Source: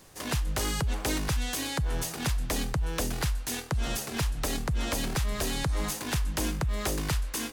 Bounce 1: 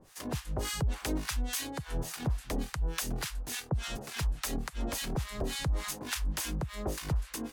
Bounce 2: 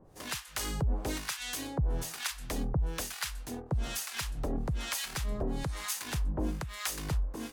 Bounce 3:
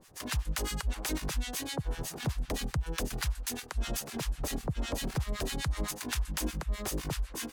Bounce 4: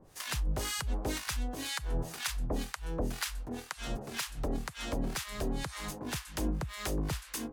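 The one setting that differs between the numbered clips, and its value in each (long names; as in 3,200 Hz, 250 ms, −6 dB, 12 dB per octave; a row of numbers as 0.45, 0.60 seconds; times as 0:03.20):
two-band tremolo in antiphase, speed: 3.5, 1.1, 7.9, 2 Hertz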